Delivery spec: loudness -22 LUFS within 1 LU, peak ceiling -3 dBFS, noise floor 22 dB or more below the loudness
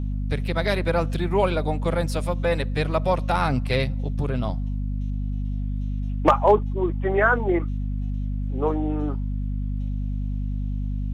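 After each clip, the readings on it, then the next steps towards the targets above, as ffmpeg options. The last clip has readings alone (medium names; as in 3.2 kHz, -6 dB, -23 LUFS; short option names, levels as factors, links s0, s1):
hum 50 Hz; highest harmonic 250 Hz; hum level -24 dBFS; loudness -25.0 LUFS; peak level -5.5 dBFS; loudness target -22.0 LUFS
-> -af "bandreject=f=50:t=h:w=4,bandreject=f=100:t=h:w=4,bandreject=f=150:t=h:w=4,bandreject=f=200:t=h:w=4,bandreject=f=250:t=h:w=4"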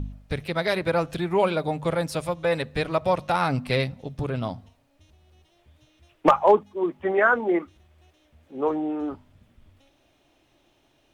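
hum not found; loudness -24.5 LUFS; peak level -7.0 dBFS; loudness target -22.0 LUFS
-> -af "volume=1.33"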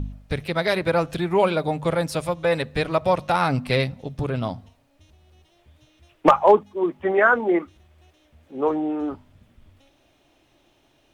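loudness -22.0 LUFS; peak level -4.5 dBFS; noise floor -62 dBFS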